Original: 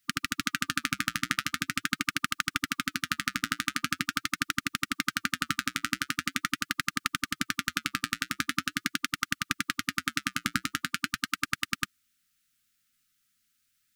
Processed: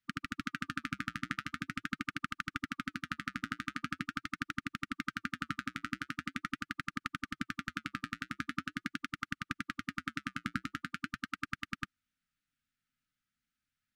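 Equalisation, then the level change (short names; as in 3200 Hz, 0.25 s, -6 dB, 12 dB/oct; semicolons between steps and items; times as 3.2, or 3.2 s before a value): high shelf 2300 Hz -8 dB; high shelf 9900 Hz -8.5 dB; bell 14000 Hz -6.5 dB 2.5 oct; -4.0 dB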